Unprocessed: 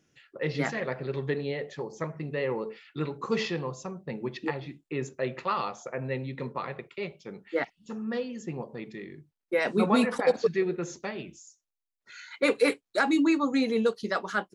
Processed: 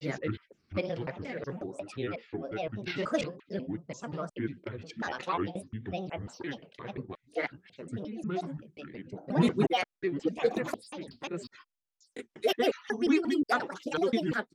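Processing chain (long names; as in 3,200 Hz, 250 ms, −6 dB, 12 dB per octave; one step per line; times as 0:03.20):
slices reordered back to front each 179 ms, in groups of 4
rotating-speaker cabinet horn 0.9 Hz, later 5 Hz, at 0:10.70
granular cloud, spray 13 ms, pitch spread up and down by 7 semitones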